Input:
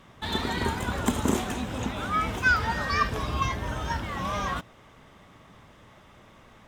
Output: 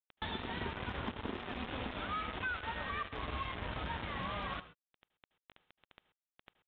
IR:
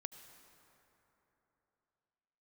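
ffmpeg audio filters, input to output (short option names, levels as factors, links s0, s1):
-filter_complex "[0:a]asettb=1/sr,asplit=3[s0][s1][s2];[s0]atrim=end=1.144[s3];[s1]atrim=start=1.14:end=3.59,asetpts=PTS-STARTPTS,afade=t=in:d=0.004:c=qsin,afade=t=out:st=2.446:d=0.004:c=qsin,adynamicequalizer=threshold=0.00631:dfrequency=140:dqfactor=1.4:tfrequency=140:tqfactor=1.4:attack=5:release=100:ratio=0.375:range=3.5:mode=cutabove:tftype=bell[s4];[s2]atrim=start=3.586[s5];[s3][s4]acrossfade=d=0.004:c1=hsin:c2=qsin[s6];[s6][s5]acrossfade=d=0.004:c1=qsin:c2=hsin,acompressor=threshold=0.00794:ratio=5,acrusher=bits=6:mix=0:aa=0.000001[s7];[1:a]atrim=start_sample=2205,atrim=end_sample=6174[s8];[s7][s8]afir=irnorm=-1:irlink=0,aresample=8000,aresample=44100,volume=2.24" -ar 44100 -c:a aac -b:a 128k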